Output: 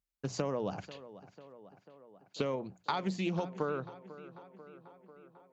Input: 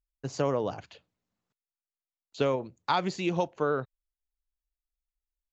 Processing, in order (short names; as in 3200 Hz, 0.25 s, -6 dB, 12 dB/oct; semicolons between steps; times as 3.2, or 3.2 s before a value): HPF 54 Hz; bell 190 Hz +9.5 dB 0.23 oct; notches 60/120/180 Hz; compressor, threshold -30 dBFS, peak gain reduction 8.5 dB; tape echo 0.493 s, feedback 72%, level -15 dB, low-pass 3200 Hz; Doppler distortion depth 0.14 ms